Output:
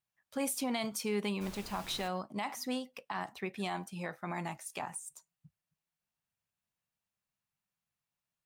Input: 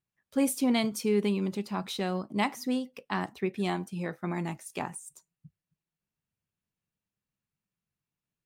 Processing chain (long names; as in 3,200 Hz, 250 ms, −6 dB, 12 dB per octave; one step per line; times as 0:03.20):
low shelf with overshoot 520 Hz −6.5 dB, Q 1.5
brickwall limiter −25.5 dBFS, peak gain reduction 11.5 dB
0:01.40–0:02.07: background noise pink −49 dBFS